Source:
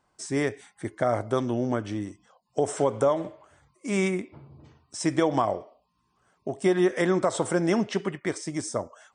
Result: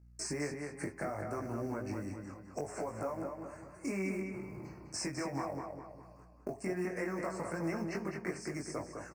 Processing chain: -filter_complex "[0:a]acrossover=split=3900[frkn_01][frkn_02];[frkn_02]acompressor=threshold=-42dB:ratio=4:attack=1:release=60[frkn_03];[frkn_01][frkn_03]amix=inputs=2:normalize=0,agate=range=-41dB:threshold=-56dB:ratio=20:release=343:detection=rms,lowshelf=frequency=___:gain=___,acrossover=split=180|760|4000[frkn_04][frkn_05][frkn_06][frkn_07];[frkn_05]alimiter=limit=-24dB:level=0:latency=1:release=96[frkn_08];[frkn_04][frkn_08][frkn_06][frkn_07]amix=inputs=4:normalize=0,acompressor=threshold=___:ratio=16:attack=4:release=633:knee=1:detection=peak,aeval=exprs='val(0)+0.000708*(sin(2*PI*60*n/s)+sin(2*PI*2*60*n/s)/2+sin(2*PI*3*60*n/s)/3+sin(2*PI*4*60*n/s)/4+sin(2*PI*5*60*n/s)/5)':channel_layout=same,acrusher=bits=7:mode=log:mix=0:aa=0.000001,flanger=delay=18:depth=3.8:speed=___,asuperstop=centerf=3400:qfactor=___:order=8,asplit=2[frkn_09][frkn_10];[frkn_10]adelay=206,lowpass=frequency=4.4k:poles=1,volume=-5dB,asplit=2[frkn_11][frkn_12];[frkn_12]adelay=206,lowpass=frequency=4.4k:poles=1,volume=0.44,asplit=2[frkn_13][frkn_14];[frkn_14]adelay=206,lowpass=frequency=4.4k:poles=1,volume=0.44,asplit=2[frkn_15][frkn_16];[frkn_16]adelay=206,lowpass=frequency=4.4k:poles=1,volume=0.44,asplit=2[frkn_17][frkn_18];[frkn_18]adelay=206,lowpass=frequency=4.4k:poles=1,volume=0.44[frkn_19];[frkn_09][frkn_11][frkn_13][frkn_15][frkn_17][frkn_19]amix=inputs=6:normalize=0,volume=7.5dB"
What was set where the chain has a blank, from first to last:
150, -3, -37dB, 0.66, 2